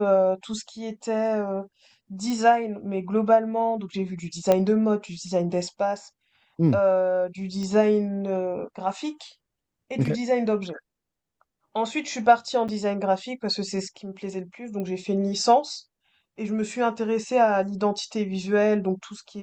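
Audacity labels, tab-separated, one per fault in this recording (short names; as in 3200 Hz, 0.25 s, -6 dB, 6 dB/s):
2.300000	2.300000	pop -17 dBFS
4.520000	4.520000	pop -8 dBFS
7.630000	7.630000	pop -23 dBFS
12.680000	12.690000	gap 6.9 ms
14.800000	14.800000	pop -21 dBFS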